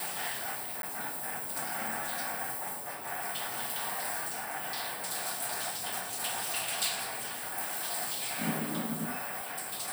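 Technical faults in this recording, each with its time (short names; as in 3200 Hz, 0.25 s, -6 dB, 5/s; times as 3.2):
0.82–0.83 gap 12 ms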